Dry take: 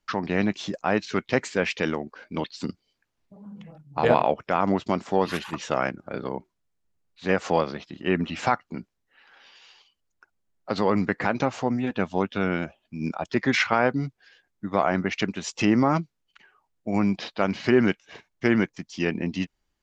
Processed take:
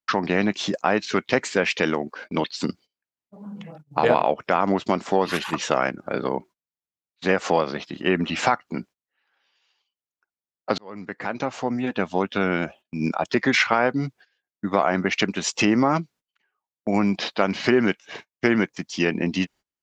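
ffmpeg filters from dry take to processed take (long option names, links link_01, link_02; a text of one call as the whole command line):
ffmpeg -i in.wav -filter_complex "[0:a]asplit=2[link_01][link_02];[link_01]atrim=end=10.78,asetpts=PTS-STARTPTS,afade=type=out:start_time=10.776:duration=0.004:curve=hsin[link_03];[link_02]atrim=start=10.78,asetpts=PTS-STARTPTS,afade=type=in:duration=1.8[link_04];[link_03][link_04]concat=n=2:v=0:a=1,agate=range=-24dB:threshold=-48dB:ratio=16:detection=peak,highpass=frequency=200:poles=1,acompressor=threshold=-27dB:ratio=2,volume=8dB" out.wav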